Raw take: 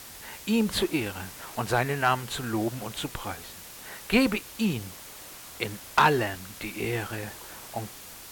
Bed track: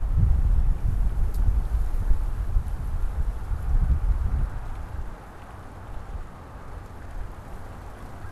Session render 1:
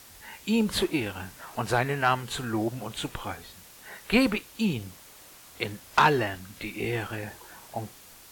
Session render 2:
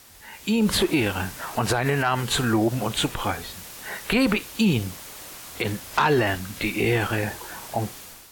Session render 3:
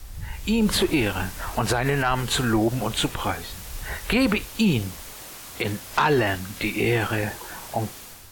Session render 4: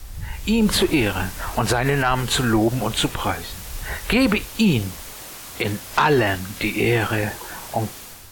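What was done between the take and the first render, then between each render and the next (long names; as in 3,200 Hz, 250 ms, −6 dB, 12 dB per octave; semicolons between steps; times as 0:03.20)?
noise reduction from a noise print 6 dB
brickwall limiter −22 dBFS, peak gain reduction 11.5 dB; automatic gain control gain up to 10 dB
mix in bed track −14.5 dB
level +3 dB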